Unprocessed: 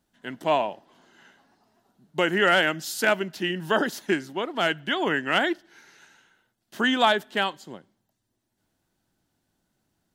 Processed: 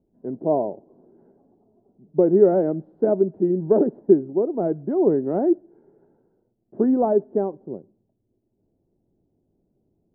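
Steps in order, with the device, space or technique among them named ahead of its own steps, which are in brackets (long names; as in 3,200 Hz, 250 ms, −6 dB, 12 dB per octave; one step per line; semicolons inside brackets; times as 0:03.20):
under water (low-pass filter 590 Hz 24 dB per octave; parametric band 400 Hz +6.5 dB 0.46 octaves)
level +6 dB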